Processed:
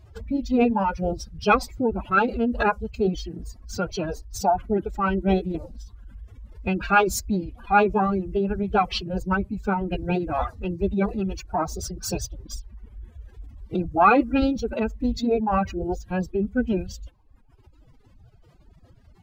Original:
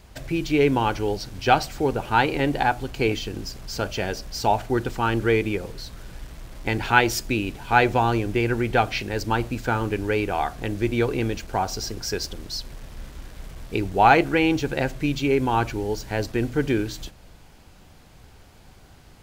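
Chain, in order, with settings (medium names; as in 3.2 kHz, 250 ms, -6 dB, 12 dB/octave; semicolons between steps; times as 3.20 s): spectral contrast enhancement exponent 1.6; reverb removal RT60 0.99 s; formant-preserving pitch shift +9 st; trim +1 dB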